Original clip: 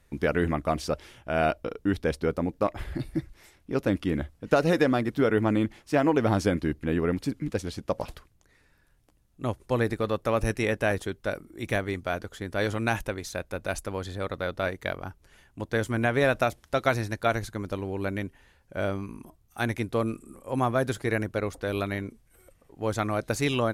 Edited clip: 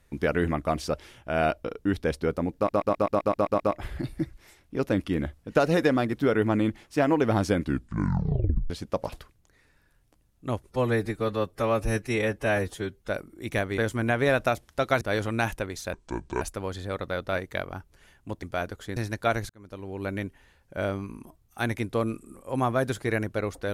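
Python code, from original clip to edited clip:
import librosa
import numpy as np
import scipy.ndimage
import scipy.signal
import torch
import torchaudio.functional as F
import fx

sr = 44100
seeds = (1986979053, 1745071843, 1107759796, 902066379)

y = fx.edit(x, sr, fx.stutter(start_s=2.56, slice_s=0.13, count=9),
    fx.tape_stop(start_s=6.56, length_s=1.1),
    fx.stretch_span(start_s=9.67, length_s=1.58, factor=1.5),
    fx.swap(start_s=11.95, length_s=0.54, other_s=15.73, other_length_s=1.23),
    fx.speed_span(start_s=13.41, length_s=0.31, speed=0.64),
    fx.fade_in_span(start_s=17.49, length_s=0.68), tone=tone)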